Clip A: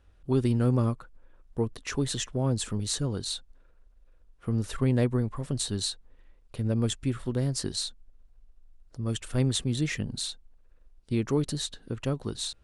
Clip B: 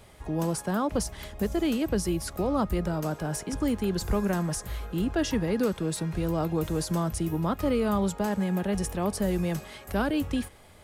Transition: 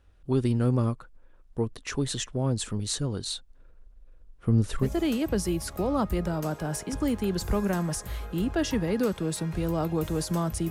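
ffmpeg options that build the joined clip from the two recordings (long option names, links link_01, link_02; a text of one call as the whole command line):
ffmpeg -i cue0.wav -i cue1.wav -filter_complex "[0:a]asettb=1/sr,asplit=3[link_01][link_02][link_03];[link_01]atrim=end=3.594[link_04];[link_02]atrim=start=3.59:end=4.9,asetpts=PTS-STARTPTS,afade=type=in:duration=0.004:curve=qsin,afade=type=out:start_time=1.306:duration=0.004:curve=qsin,lowshelf=frequency=470:gain=6.5[link_05];[link_03]atrim=start=4.896[link_06];[link_04][link_05]acrossfade=duration=0.004:curve1=hsin:curve2=qsin[link_07];[link_07][link_06]acrossfade=duration=0.004:curve1=qsin:curve2=hsin,apad=whole_dur=10.7,atrim=end=10.7,atrim=end=4.9,asetpts=PTS-STARTPTS[link_08];[1:a]atrim=start=1.38:end=7.3,asetpts=PTS-STARTPTS[link_09];[link_08][link_09]acrossfade=duration=0.12:curve1=tri:curve2=tri" out.wav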